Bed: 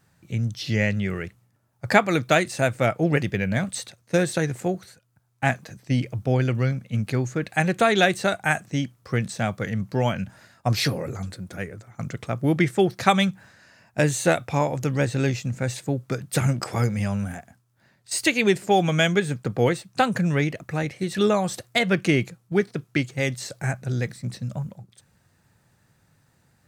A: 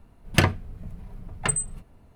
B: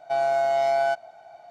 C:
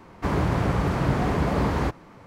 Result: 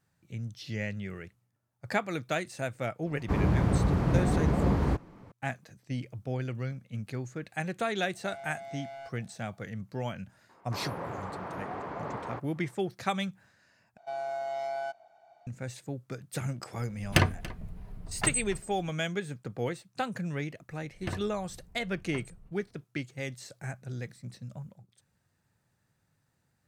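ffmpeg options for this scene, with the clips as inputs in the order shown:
-filter_complex "[3:a]asplit=2[s0][s1];[2:a]asplit=2[s2][s3];[1:a]asplit=2[s4][s5];[0:a]volume=0.251[s6];[s0]lowshelf=f=490:g=9[s7];[s2]asoftclip=type=tanh:threshold=0.0631[s8];[s1]bandpass=f=900:t=q:w=0.86:csg=0[s9];[s4]aecho=1:1:284:0.112[s10];[s5]lowpass=f=1500:p=1[s11];[s6]asplit=2[s12][s13];[s12]atrim=end=13.974[s14];[s3]atrim=end=1.5,asetpts=PTS-STARTPTS,volume=0.251[s15];[s13]atrim=start=15.466[s16];[s7]atrim=end=2.26,asetpts=PTS-STARTPTS,volume=0.335,afade=t=in:d=0.004:c=hsin,afade=t=out:st=2.256:d=0.004:c=hsin,adelay=3060[s17];[s8]atrim=end=1.5,asetpts=PTS-STARTPTS,volume=0.15,afade=t=in:d=0.004:c=hsin,afade=t=out:st=1.496:d=0.004:c=hsin,adelay=8140[s18];[s9]atrim=end=2.26,asetpts=PTS-STARTPTS,volume=0.376,afade=t=in:d=0.004:c=hsin,afade=t=out:st=2.256:d=0.004:c=hsin,adelay=10490[s19];[s10]atrim=end=2.15,asetpts=PTS-STARTPTS,volume=0.668,afade=t=in:d=0.004:c=hsin,afade=t=out:st=2.146:d=0.004:c=hsin,adelay=16780[s20];[s11]atrim=end=2.15,asetpts=PTS-STARTPTS,volume=0.178,afade=t=in:d=0.004:c=hsin,afade=t=out:st=2.146:d=0.004:c=hsin,adelay=20690[s21];[s14][s15]acrossfade=d=0.004:c1=hsin:c2=hsin[s22];[s22][s16]acrossfade=d=0.004:c1=hsin:c2=hsin[s23];[s23][s17][s18][s19][s20][s21]amix=inputs=6:normalize=0"

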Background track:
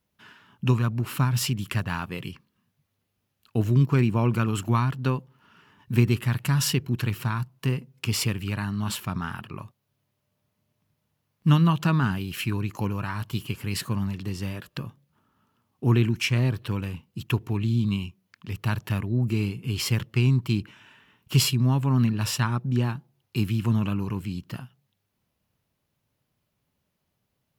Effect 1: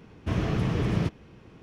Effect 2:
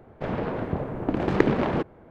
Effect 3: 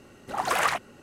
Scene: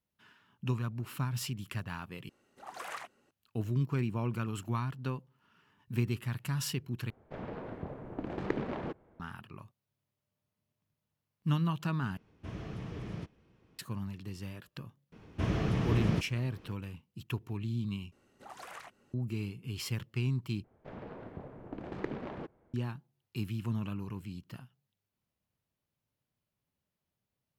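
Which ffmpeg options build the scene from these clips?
-filter_complex "[3:a]asplit=2[s0][s1];[2:a]asplit=2[s2][s3];[1:a]asplit=2[s4][s5];[0:a]volume=0.282[s6];[s0]lowshelf=f=160:g=-9.5[s7];[s1]acrossover=split=110|2200[s8][s9][s10];[s8]acompressor=threshold=0.00141:ratio=4[s11];[s9]acompressor=threshold=0.0316:ratio=4[s12];[s10]acompressor=threshold=0.0141:ratio=4[s13];[s11][s12][s13]amix=inputs=3:normalize=0[s14];[s6]asplit=6[s15][s16][s17][s18][s19][s20];[s15]atrim=end=2.294[s21];[s7]atrim=end=1.02,asetpts=PTS-STARTPTS,volume=0.133[s22];[s16]atrim=start=3.306:end=7.104[s23];[s2]atrim=end=2.1,asetpts=PTS-STARTPTS,volume=0.224[s24];[s17]atrim=start=9.196:end=12.174[s25];[s4]atrim=end=1.62,asetpts=PTS-STARTPTS,volume=0.178[s26];[s18]atrim=start=13.786:end=18.124[s27];[s14]atrim=end=1.02,asetpts=PTS-STARTPTS,volume=0.15[s28];[s19]atrim=start=19.136:end=20.644[s29];[s3]atrim=end=2.1,asetpts=PTS-STARTPTS,volume=0.141[s30];[s20]atrim=start=22.736[s31];[s5]atrim=end=1.62,asetpts=PTS-STARTPTS,volume=0.631,afade=t=in:d=0.004:c=hsin,afade=t=out:st=1.616:d=0.004:c=hsin,adelay=15120[s32];[s21][s22]acrossfade=d=0.004:c1=hsin:c2=hsin[s33];[s33][s23]acrossfade=d=0.004:c1=hsin:c2=hsin[s34];[s34][s24]acrossfade=d=0.004:c1=hsin:c2=hsin[s35];[s35][s25]acrossfade=d=0.004:c1=hsin:c2=hsin[s36];[s36][s26]acrossfade=d=0.004:c1=hsin:c2=hsin[s37];[s37][s27]acrossfade=d=0.004:c1=hsin:c2=hsin[s38];[s38][s28]acrossfade=d=0.004:c1=hsin:c2=hsin[s39];[s39][s29]acrossfade=d=0.004:c1=hsin:c2=hsin[s40];[s40][s30]acrossfade=d=0.004:c1=hsin:c2=hsin[s41];[s41][s31]acrossfade=d=0.004:c1=hsin:c2=hsin[s42];[s42][s32]amix=inputs=2:normalize=0"

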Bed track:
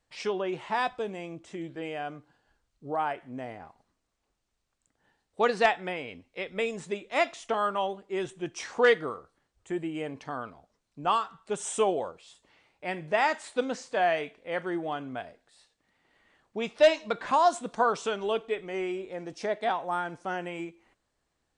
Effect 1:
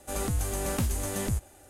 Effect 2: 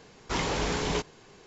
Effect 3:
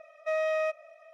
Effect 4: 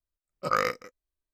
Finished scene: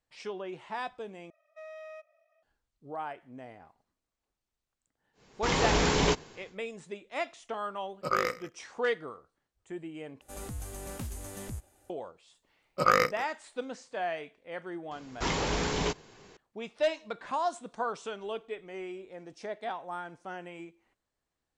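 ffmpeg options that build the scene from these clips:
-filter_complex "[2:a]asplit=2[s0][s1];[4:a]asplit=2[s2][s3];[0:a]volume=0.398[s4];[s0]dynaudnorm=f=100:g=7:m=3.76[s5];[s2]aecho=1:1:100:0.106[s6];[s3]acontrast=30[s7];[s4]asplit=3[s8][s9][s10];[s8]atrim=end=1.304[s11];[3:a]atrim=end=1.13,asetpts=PTS-STARTPTS,volume=0.141[s12];[s9]atrim=start=2.426:end=10.214[s13];[1:a]atrim=end=1.69,asetpts=PTS-STARTPTS,volume=0.299[s14];[s10]atrim=start=11.896[s15];[s5]atrim=end=1.46,asetpts=PTS-STARTPTS,volume=0.422,afade=t=in:d=0.1,afade=t=out:st=1.36:d=0.1,adelay=226233S[s16];[s6]atrim=end=1.33,asetpts=PTS-STARTPTS,volume=0.708,afade=t=in:d=0.004:c=hsin,afade=t=out:st=1.326:d=0.004:c=hsin,adelay=7600[s17];[s7]atrim=end=1.33,asetpts=PTS-STARTPTS,volume=0.75,afade=t=in:d=0.004:c=hsin,afade=t=out:st=1.326:d=0.004:c=hsin,adelay=12350[s18];[s1]atrim=end=1.46,asetpts=PTS-STARTPTS,volume=0.891,afade=t=in:d=0.004:c=hsin,afade=t=out:st=1.456:d=0.004:c=hsin,adelay=14910[s19];[s11][s12]acrossfade=d=0.004:c1=hsin:c2=hsin[s20];[s20][s13]acrossfade=d=0.004:c1=hsin:c2=hsin[s21];[s21][s14]acrossfade=d=0.004:c1=hsin:c2=hsin[s22];[s22][s15]acrossfade=d=0.004:c1=hsin:c2=hsin[s23];[s23][s16][s17][s18][s19]amix=inputs=5:normalize=0"

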